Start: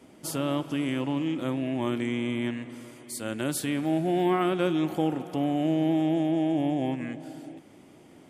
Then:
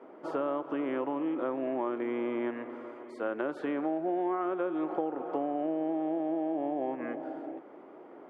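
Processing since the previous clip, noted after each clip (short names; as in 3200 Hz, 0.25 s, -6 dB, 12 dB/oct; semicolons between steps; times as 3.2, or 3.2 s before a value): Chebyshev band-pass 400–1300 Hz, order 2; compressor 6:1, threshold -36 dBFS, peak gain reduction 12.5 dB; gain +7.5 dB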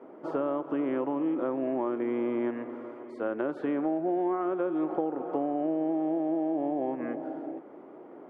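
tilt -2 dB/oct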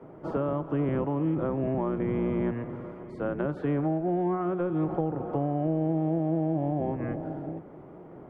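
octaver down 1 oct, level +1 dB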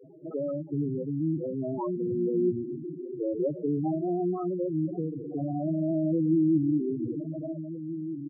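LFO low-pass sine 0.26 Hz 340–2600 Hz; outdoor echo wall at 270 m, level -11 dB; loudest bins only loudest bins 4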